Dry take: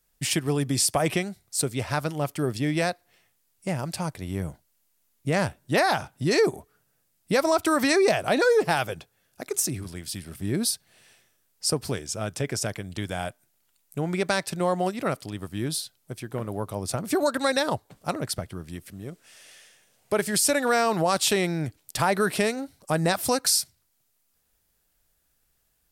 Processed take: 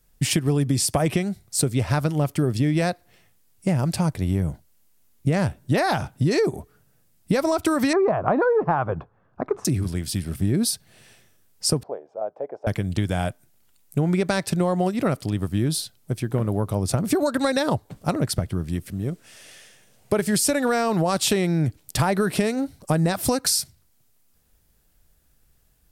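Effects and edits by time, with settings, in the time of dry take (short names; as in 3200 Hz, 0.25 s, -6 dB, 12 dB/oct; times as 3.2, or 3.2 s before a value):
7.93–9.65 synth low-pass 1100 Hz, resonance Q 3.5
11.83–12.67 Butterworth band-pass 670 Hz, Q 1.7
whole clip: low shelf 350 Hz +10 dB; compressor, threshold -21 dBFS; gain +3.5 dB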